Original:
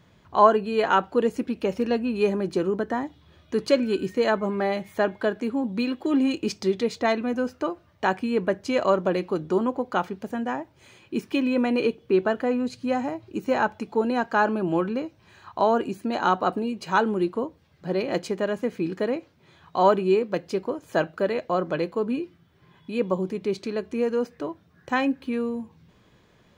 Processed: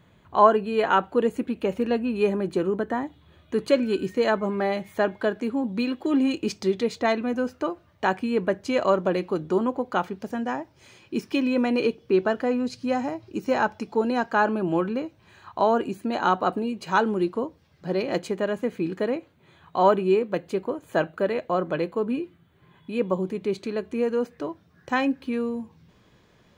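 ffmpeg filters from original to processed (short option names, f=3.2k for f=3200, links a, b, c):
-af "asetnsamples=n=441:p=0,asendcmd='3.76 equalizer g -2.5;10.2 equalizer g 7;14.3 equalizer g -4.5;16.87 equalizer g 3;18.17 equalizer g -7;19.17 equalizer g -14;23.13 equalizer g -7.5;24.38 equalizer g 2',equalizer=f=5.3k:t=o:w=0.35:g=-13.5"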